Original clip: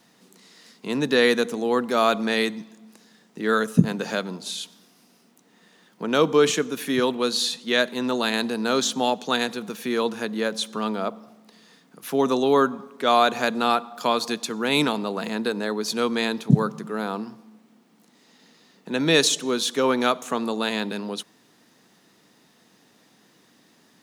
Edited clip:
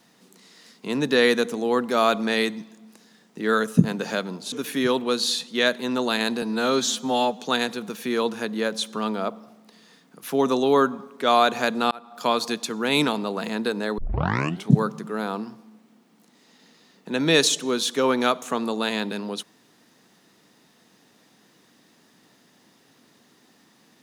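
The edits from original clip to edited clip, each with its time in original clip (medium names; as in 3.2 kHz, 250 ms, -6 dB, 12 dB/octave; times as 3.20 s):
4.52–6.65 s: delete
8.55–9.21 s: stretch 1.5×
13.71–14.07 s: fade in
15.78 s: tape start 0.72 s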